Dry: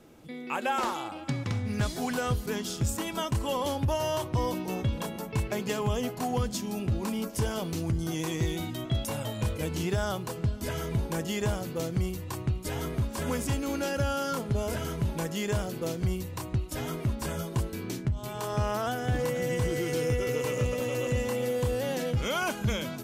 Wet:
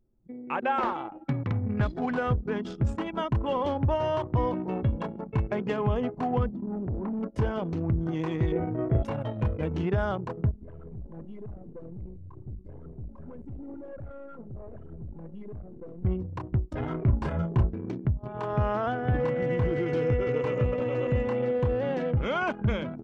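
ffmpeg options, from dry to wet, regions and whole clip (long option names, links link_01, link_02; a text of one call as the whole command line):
ffmpeg -i in.wav -filter_complex "[0:a]asettb=1/sr,asplit=3[link_01][link_02][link_03];[link_01]atrim=end=6.494[link_04];[link_02]atrim=start=6.49:end=7.23,asetpts=PTS-STARTPTS,afade=type=in:duration=0.004:curve=qsin,afade=type=out:start_time=0.736:duration=0.004:curve=qsin,adynamicsmooth=sensitivity=2:basefreq=1800,asoftclip=type=hard:threshold=-30dB[link_05];[link_03]atrim=start=7.226[link_06];[link_04][link_05]acrossfade=duration=0.004:curve1=hsin:curve2=qsin[link_07];[link_07][link_06]acrossfade=duration=0.004:curve1=qsin:curve2=hsin,asettb=1/sr,asplit=3[link_08][link_09][link_10];[link_08]atrim=end=8.524[link_11];[link_09]atrim=start=8.52:end=9.03,asetpts=PTS-STARTPTS,afade=type=in:duration=0.004:curve=qsin,afade=type=out:start_time=0.506:duration=0.004:curve=qsin,lowpass=frequency=2200:width=0.5412,lowpass=frequency=2200:width=1.3066,equalizer=frequency=460:width_type=o:width=0.44:gain=13.5,asplit=2[link_12][link_13];[link_13]adelay=35,volume=-4.5dB[link_14];[link_12][link_14]amix=inputs=2:normalize=0,atrim=end_sample=22491[link_15];[link_10]atrim=start=9.026[link_16];[link_11][link_15]acrossfade=duration=0.004:curve1=hsin:curve2=qsin[link_17];[link_17][link_16]acrossfade=duration=0.004:curve1=qsin:curve2=hsin,asettb=1/sr,asplit=3[link_18][link_19][link_20];[link_18]atrim=end=10.514[link_21];[link_19]atrim=start=10.51:end=16.05,asetpts=PTS-STARTPTS,afade=type=in:duration=0.004:curve=qsin,afade=type=out:start_time=5.536:duration=0.004:curve=qsin,aeval=exprs='(tanh(79.4*val(0)+0.4)-tanh(0.4))/79.4':channel_layout=same,aecho=1:1:79:0.158,atrim=end_sample=244314[link_22];[link_20]atrim=start=16.046[link_23];[link_21][link_22]acrossfade=duration=0.004:curve1=hsin:curve2=qsin[link_24];[link_24][link_23]acrossfade=duration=0.004:curve1=qsin:curve2=hsin,asettb=1/sr,asplit=3[link_25][link_26][link_27];[link_25]atrim=end=16.804[link_28];[link_26]atrim=start=16.8:end=17.74,asetpts=PTS-STARTPTS,afade=type=in:duration=0.004:curve=qsin,afade=type=out:start_time=0.936:duration=0.004:curve=qsin,lowshelf=frequency=110:gain=4.5,asplit=2[link_29][link_30];[link_30]adelay=35,volume=-5dB[link_31];[link_29][link_31]amix=inputs=2:normalize=0,atrim=end_sample=41454[link_32];[link_27]atrim=start=17.736[link_33];[link_28][link_32]acrossfade=duration=0.004:curve1=hsin:curve2=qsin[link_34];[link_34][link_33]acrossfade=duration=0.004:curve1=qsin:curve2=hsin,anlmdn=6.31,lowpass=2100,volume=2.5dB" out.wav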